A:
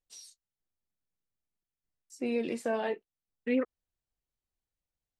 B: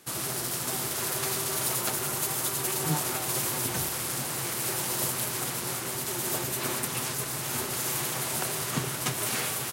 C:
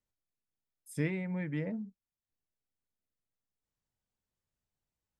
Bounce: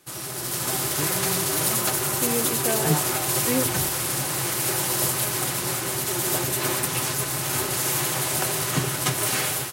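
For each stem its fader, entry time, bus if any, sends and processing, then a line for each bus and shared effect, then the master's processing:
+3.0 dB, 0.00 s, no send, none
-1.0 dB, 0.00 s, no send, level rider gain up to 8 dB; comb of notches 230 Hz
-0.5 dB, 0.00 s, no send, none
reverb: none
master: none

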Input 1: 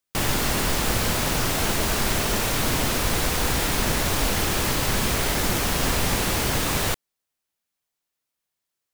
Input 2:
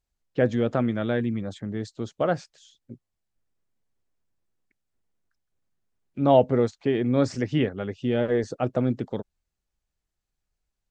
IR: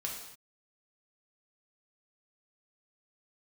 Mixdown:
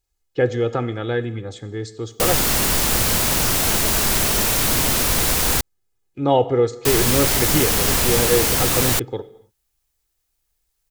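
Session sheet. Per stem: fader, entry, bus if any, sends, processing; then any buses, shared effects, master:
+1.5 dB, 2.05 s, muted 5.61–6.85 s, no send, none
-0.5 dB, 0.00 s, send -9.5 dB, comb 2.4 ms, depth 70%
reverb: on, pre-delay 3 ms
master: treble shelf 5.2 kHz +8.5 dB

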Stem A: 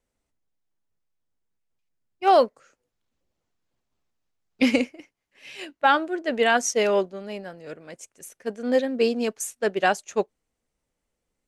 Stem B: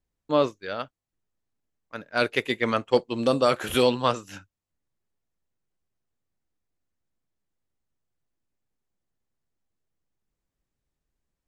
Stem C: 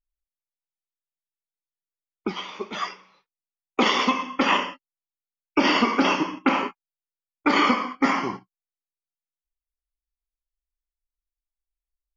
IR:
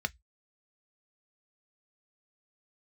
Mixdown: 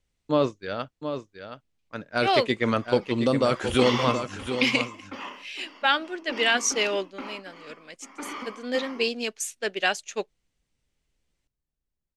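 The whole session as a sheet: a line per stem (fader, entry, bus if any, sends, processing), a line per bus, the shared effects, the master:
-6.0 dB, 0.00 s, no send, no echo send, frequency weighting D
0.0 dB, 0.00 s, no send, echo send -9 dB, elliptic low-pass 9.6 kHz; bass shelf 320 Hz +7 dB; peak limiter -10 dBFS, peak gain reduction 5 dB
-9.5 dB, 0.00 s, no send, echo send -10.5 dB, steep high-pass 190 Hz 48 dB/octave; waveshaping leveller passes 1; auto duck -23 dB, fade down 0.45 s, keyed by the first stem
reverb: none
echo: delay 722 ms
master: none

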